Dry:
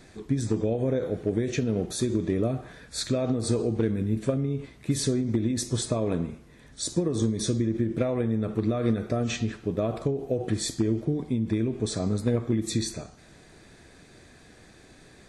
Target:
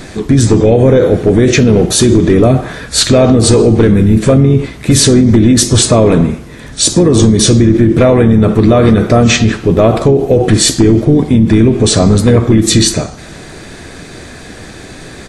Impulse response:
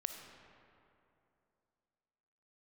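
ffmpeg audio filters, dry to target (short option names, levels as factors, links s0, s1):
-filter_complex "[0:a]asplit=3[s0][s1][s2];[s1]asetrate=29433,aresample=44100,atempo=1.49831,volume=0.141[s3];[s2]asetrate=37084,aresample=44100,atempo=1.18921,volume=0.251[s4];[s0][s3][s4]amix=inputs=3:normalize=0,apsyclip=15,volume=0.841"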